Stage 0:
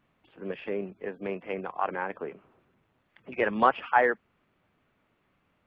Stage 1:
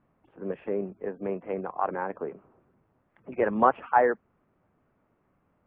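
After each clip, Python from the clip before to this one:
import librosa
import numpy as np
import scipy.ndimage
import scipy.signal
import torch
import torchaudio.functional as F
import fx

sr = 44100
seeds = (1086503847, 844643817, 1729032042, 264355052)

y = scipy.signal.sosfilt(scipy.signal.butter(2, 1200.0, 'lowpass', fs=sr, output='sos'), x)
y = y * librosa.db_to_amplitude(2.5)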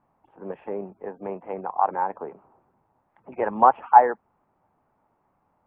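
y = fx.peak_eq(x, sr, hz=860.0, db=14.0, octaves=0.69)
y = y * librosa.db_to_amplitude(-3.5)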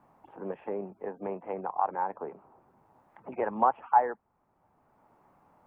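y = fx.band_squash(x, sr, depth_pct=40)
y = y * librosa.db_to_amplitude(-5.5)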